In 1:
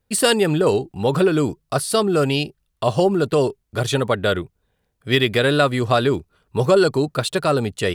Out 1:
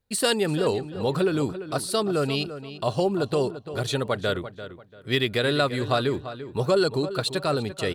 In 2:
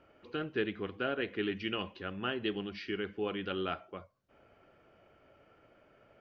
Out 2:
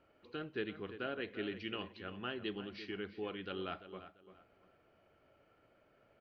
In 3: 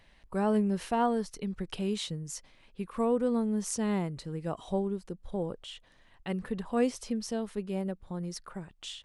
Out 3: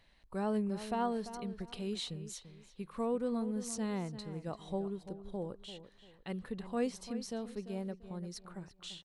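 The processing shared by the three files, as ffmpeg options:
ffmpeg -i in.wav -filter_complex "[0:a]equalizer=frequency=4100:width=6.9:gain=7.5,asplit=2[link_01][link_02];[link_02]adelay=342,lowpass=frequency=3300:poles=1,volume=-12dB,asplit=2[link_03][link_04];[link_04]adelay=342,lowpass=frequency=3300:poles=1,volume=0.29,asplit=2[link_05][link_06];[link_06]adelay=342,lowpass=frequency=3300:poles=1,volume=0.29[link_07];[link_01][link_03][link_05][link_07]amix=inputs=4:normalize=0,volume=-6.5dB" out.wav

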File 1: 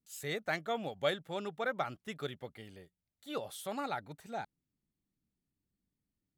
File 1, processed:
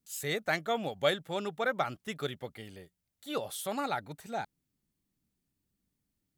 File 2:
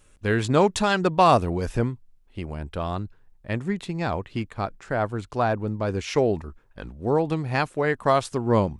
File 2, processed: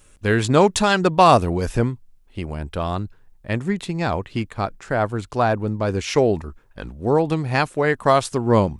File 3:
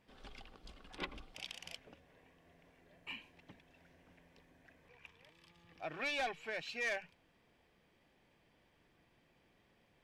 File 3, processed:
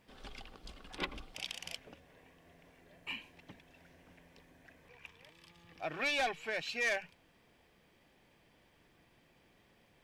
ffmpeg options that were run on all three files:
ffmpeg -i in.wav -af "highshelf=frequency=5700:gain=4.5,volume=4dB" out.wav

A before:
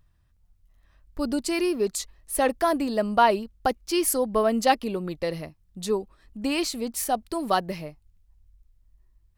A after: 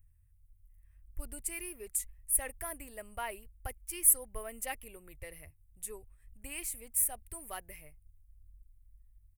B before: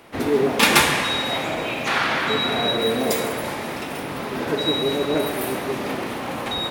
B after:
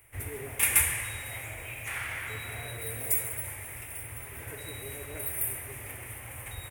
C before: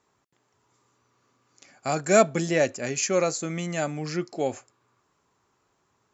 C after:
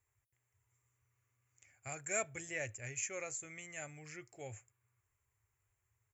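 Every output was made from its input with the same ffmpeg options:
ffmpeg -i in.wav -af "firequalizer=gain_entry='entry(110,0);entry(170,-30);entry(410,-22);entry(1200,-21);entry(2100,-8);entry(4200,-28);entry(9000,3)':delay=0.05:min_phase=1" out.wav

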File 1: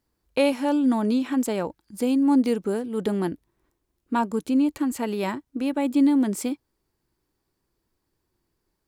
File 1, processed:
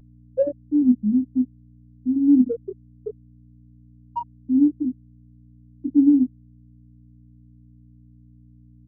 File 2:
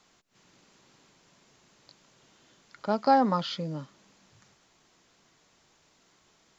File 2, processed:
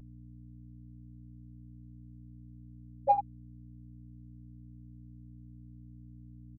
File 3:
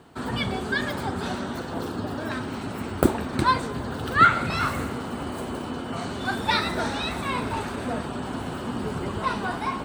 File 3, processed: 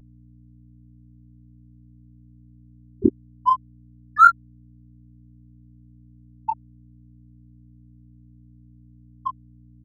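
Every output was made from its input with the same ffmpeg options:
ffmpeg -i in.wav -filter_complex "[0:a]afftfilt=real='re*gte(hypot(re,im),0.891)':imag='im*gte(hypot(re,im),0.891)':win_size=1024:overlap=0.75,aeval=exprs='val(0)+0.00282*(sin(2*PI*60*n/s)+sin(2*PI*2*60*n/s)/2+sin(2*PI*3*60*n/s)/3+sin(2*PI*4*60*n/s)/4+sin(2*PI*5*60*n/s)/5)':channel_layout=same,asplit=2[link_01][link_02];[link_02]adelay=24,volume=-5dB[link_03];[link_01][link_03]amix=inputs=2:normalize=0,adynamicsmooth=sensitivity=6.5:basefreq=4900,volume=3.5dB" out.wav

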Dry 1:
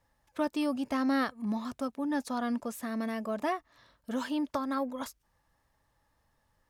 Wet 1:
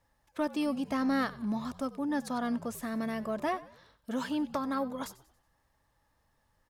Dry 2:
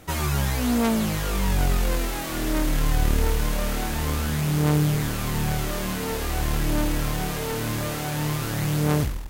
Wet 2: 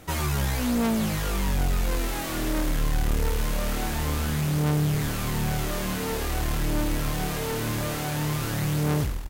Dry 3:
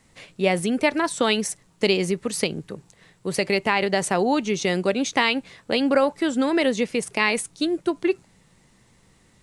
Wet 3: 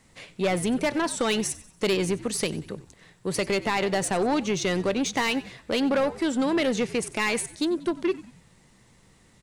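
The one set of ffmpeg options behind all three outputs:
ffmpeg -i in.wav -filter_complex "[0:a]asoftclip=type=tanh:threshold=-18.5dB,asplit=5[link_01][link_02][link_03][link_04][link_05];[link_02]adelay=93,afreqshift=-68,volume=-18dB[link_06];[link_03]adelay=186,afreqshift=-136,volume=-25.3dB[link_07];[link_04]adelay=279,afreqshift=-204,volume=-32.7dB[link_08];[link_05]adelay=372,afreqshift=-272,volume=-40dB[link_09];[link_01][link_06][link_07][link_08][link_09]amix=inputs=5:normalize=0" out.wav

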